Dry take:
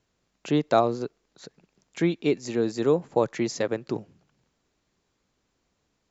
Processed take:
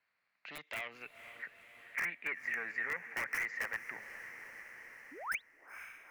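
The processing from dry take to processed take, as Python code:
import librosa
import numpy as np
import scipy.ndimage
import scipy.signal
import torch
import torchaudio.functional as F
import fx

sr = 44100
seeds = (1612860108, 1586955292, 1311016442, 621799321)

p1 = fx.env_lowpass(x, sr, base_hz=1800.0, full_db=-20.5)
p2 = fx.peak_eq(p1, sr, hz=360.0, db=-9.0, octaves=0.72)
p3 = fx.spec_paint(p2, sr, seeds[0], shape='rise', start_s=5.11, length_s=0.31, low_hz=240.0, high_hz=4300.0, level_db=-39.0)
p4 = fx.level_steps(p3, sr, step_db=14)
p5 = p3 + (p4 * 10.0 ** (-0.5 / 20.0))
p6 = 10.0 ** (-23.5 / 20.0) * np.tanh(p5 / 10.0 ** (-23.5 / 20.0))
p7 = fx.filter_sweep_bandpass(p6, sr, from_hz=4300.0, to_hz=1900.0, start_s=0.42, end_s=1.46, q=7.4)
p8 = (np.mod(10.0 ** (39.0 / 20.0) * p7 + 1.0, 2.0) - 1.0) / 10.0 ** (39.0 / 20.0)
p9 = fx.high_shelf_res(p8, sr, hz=2800.0, db=-9.0, q=3.0)
p10 = fx.echo_diffused(p9, sr, ms=486, feedback_pct=55, wet_db=-15)
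p11 = fx.band_squash(p10, sr, depth_pct=40)
y = p11 * 10.0 ** (8.5 / 20.0)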